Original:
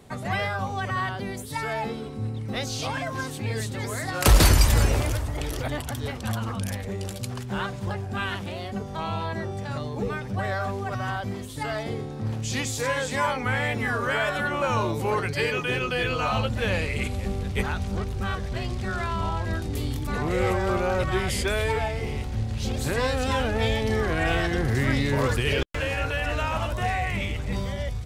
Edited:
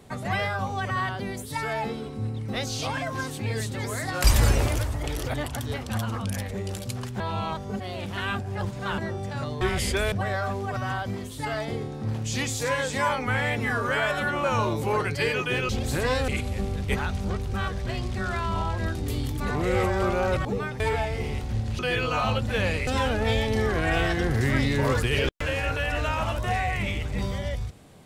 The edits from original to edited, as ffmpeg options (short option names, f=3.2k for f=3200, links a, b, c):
-filter_complex "[0:a]asplit=12[a][b][c][d][e][f][g][h][i][j][k][l];[a]atrim=end=4.242[m];[b]atrim=start=4.578:end=7.542[n];[c]atrim=start=7.538:end=9.322,asetpts=PTS-STARTPTS,areverse[o];[d]atrim=start=9.318:end=9.952[p];[e]atrim=start=21.118:end=21.632[q];[f]atrim=start=10.298:end=15.872[r];[g]atrim=start=22.618:end=23.212[s];[h]atrim=start=16.948:end=21.122[t];[i]atrim=start=9.948:end=10.302[u];[j]atrim=start=21.628:end=22.622[v];[k]atrim=start=15.868:end=16.952[w];[l]atrim=start=23.208[x];[m][n]acrossfade=d=0.004:c1=hsin:c2=hsin[y];[y][o]acrossfade=d=0.004:c1=hsin:c2=hsin[z];[z][p]acrossfade=d=0.004:c1=hsin:c2=hsin[aa];[aa][q]acrossfade=d=0.004:c1=hsin:c2=hsin[ab];[ab][r]acrossfade=d=0.004:c1=hsin:c2=hsin[ac];[ac][s]acrossfade=d=0.004:c1=hsin:c2=hsin[ad];[ad][t]acrossfade=d=0.004:c1=hsin:c2=hsin[ae];[ae][u]acrossfade=d=0.004:c1=hsin:c2=hsin[af];[af][v]acrossfade=d=0.004:c1=hsin:c2=hsin[ag];[ag][w]acrossfade=d=0.004:c1=hsin:c2=hsin[ah];[ah][x]acrossfade=d=0.004:c1=hsin:c2=hsin"